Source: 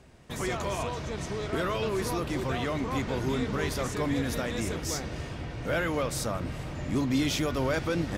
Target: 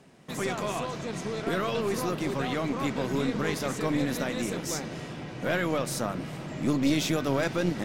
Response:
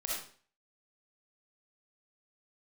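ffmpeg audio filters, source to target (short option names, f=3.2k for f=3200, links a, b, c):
-af "asetrate=45938,aresample=44100,lowshelf=f=110:t=q:w=1.5:g=-14,aeval=exprs='0.178*(cos(1*acos(clip(val(0)/0.178,-1,1)))-cos(1*PI/2))+0.0447*(cos(2*acos(clip(val(0)/0.178,-1,1)))-cos(2*PI/2))':c=same"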